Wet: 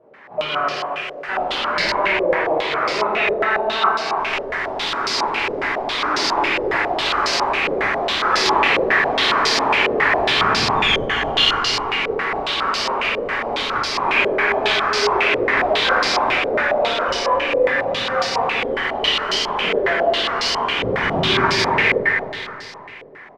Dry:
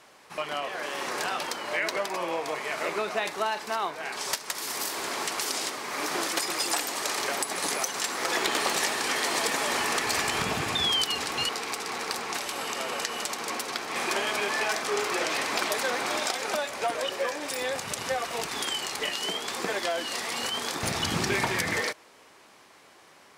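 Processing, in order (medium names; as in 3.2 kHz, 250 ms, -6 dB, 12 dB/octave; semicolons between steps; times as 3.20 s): tracing distortion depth 0.22 ms; 0.77–1.29 s: differentiator; feedback delay 265 ms, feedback 51%, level -7 dB; gated-style reverb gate 450 ms falling, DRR -7 dB; step-sequenced low-pass 7.3 Hz 510–4900 Hz; trim -1 dB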